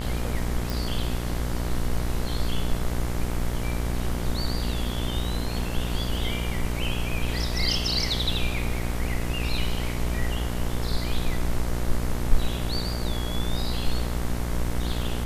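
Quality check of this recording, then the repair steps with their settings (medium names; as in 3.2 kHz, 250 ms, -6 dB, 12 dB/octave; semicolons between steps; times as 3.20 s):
buzz 60 Hz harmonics 38 -29 dBFS
0.70 s: pop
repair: de-click; de-hum 60 Hz, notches 38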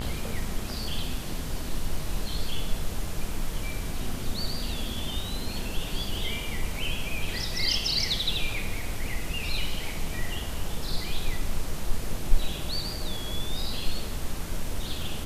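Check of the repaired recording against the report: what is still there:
nothing left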